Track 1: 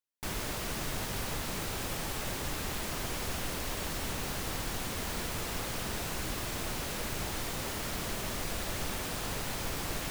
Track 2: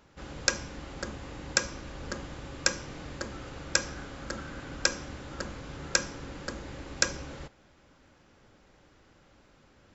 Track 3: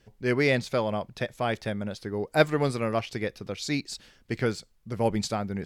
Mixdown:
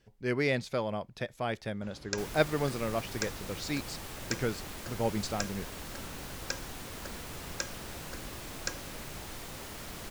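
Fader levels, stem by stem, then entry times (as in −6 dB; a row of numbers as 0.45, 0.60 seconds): −7.0, −10.5, −5.5 decibels; 1.95, 1.65, 0.00 seconds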